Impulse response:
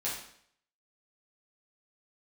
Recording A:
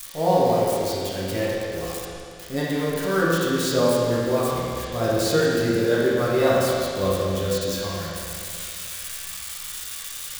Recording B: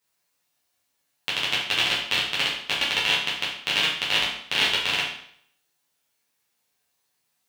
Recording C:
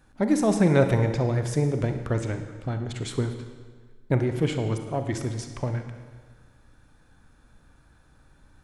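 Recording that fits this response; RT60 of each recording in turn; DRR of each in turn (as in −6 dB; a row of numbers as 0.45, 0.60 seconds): B; 2.4, 0.65, 1.5 seconds; −8.0, −8.0, 6.5 decibels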